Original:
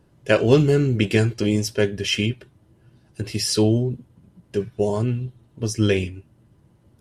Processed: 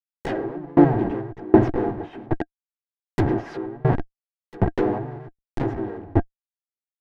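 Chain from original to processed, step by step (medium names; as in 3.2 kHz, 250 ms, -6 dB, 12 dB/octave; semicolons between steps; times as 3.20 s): Schmitt trigger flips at -32.5 dBFS; small resonant body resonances 310/700/1600 Hz, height 15 dB, ringing for 45 ms; harmony voices +3 st -2 dB; low-pass that closes with the level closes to 1.1 kHz, closed at -13 dBFS; sawtooth tremolo in dB decaying 1.3 Hz, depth 29 dB; trim +3 dB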